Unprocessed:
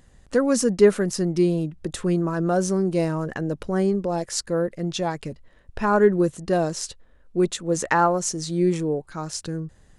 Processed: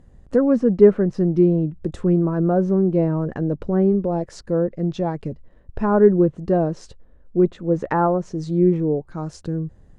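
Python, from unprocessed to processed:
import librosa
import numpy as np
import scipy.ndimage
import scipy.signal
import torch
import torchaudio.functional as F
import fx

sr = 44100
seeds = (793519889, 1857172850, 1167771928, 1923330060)

y = fx.env_lowpass_down(x, sr, base_hz=2500.0, full_db=-18.5)
y = fx.tilt_shelf(y, sr, db=9.0, hz=1200.0)
y = y * librosa.db_to_amplitude(-3.5)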